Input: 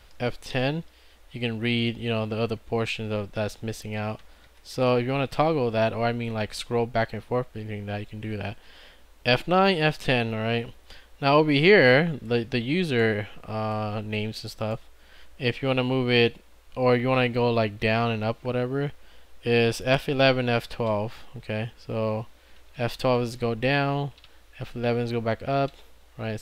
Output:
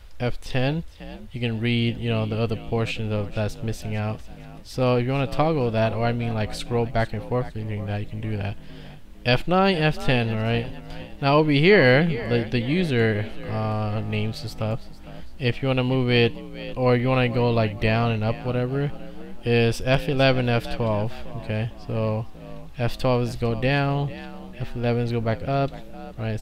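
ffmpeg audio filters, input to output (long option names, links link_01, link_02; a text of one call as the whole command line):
ffmpeg -i in.wav -filter_complex "[0:a]lowshelf=frequency=120:gain=11,asplit=5[link_01][link_02][link_03][link_04][link_05];[link_02]adelay=454,afreqshift=46,volume=-16.5dB[link_06];[link_03]adelay=908,afreqshift=92,volume=-24dB[link_07];[link_04]adelay=1362,afreqshift=138,volume=-31.6dB[link_08];[link_05]adelay=1816,afreqshift=184,volume=-39.1dB[link_09];[link_01][link_06][link_07][link_08][link_09]amix=inputs=5:normalize=0" out.wav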